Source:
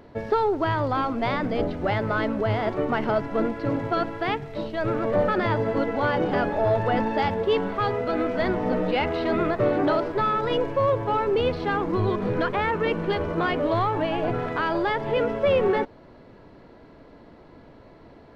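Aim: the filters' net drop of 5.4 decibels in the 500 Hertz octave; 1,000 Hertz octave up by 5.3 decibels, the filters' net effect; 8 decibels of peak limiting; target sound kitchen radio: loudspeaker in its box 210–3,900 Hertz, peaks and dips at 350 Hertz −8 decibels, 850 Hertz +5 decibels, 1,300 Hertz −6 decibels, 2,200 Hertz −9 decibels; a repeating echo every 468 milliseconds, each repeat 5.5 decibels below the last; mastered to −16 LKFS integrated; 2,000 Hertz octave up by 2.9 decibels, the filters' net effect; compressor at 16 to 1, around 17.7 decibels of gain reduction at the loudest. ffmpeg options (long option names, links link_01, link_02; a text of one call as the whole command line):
ffmpeg -i in.wav -af "equalizer=frequency=500:width_type=o:gain=-8,equalizer=frequency=1000:width_type=o:gain=6,equalizer=frequency=2000:width_type=o:gain=7,acompressor=threshold=-34dB:ratio=16,alimiter=level_in=7dB:limit=-24dB:level=0:latency=1,volume=-7dB,highpass=210,equalizer=frequency=350:width_type=q:width=4:gain=-8,equalizer=frequency=850:width_type=q:width=4:gain=5,equalizer=frequency=1300:width_type=q:width=4:gain=-6,equalizer=frequency=2200:width_type=q:width=4:gain=-9,lowpass=frequency=3900:width=0.5412,lowpass=frequency=3900:width=1.3066,aecho=1:1:468|936|1404|1872|2340|2808|3276:0.531|0.281|0.149|0.079|0.0419|0.0222|0.0118,volume=24.5dB" out.wav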